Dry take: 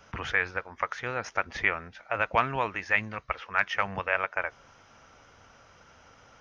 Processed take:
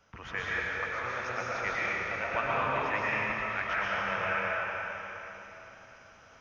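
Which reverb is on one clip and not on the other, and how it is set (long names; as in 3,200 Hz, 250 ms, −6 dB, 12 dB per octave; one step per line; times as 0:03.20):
comb and all-pass reverb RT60 3.6 s, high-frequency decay 1×, pre-delay 80 ms, DRR −8.5 dB
level −10.5 dB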